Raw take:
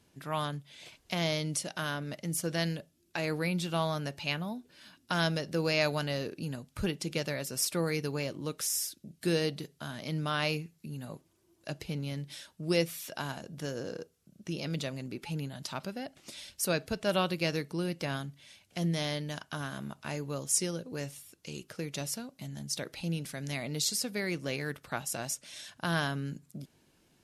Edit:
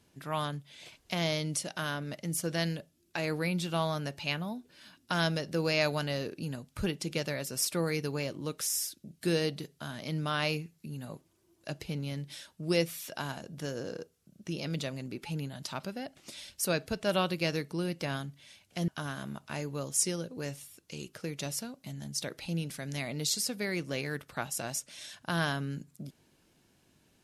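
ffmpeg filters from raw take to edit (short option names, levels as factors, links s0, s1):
-filter_complex "[0:a]asplit=2[s0][s1];[s0]atrim=end=18.882[s2];[s1]atrim=start=19.428[s3];[s2][s3]acrossfade=d=0.004:c1=hsin:c2=hsin"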